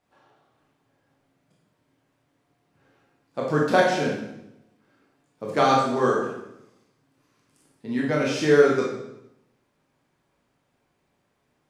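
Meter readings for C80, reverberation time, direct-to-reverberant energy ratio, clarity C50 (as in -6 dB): 5.5 dB, 0.85 s, -4.0 dB, 2.0 dB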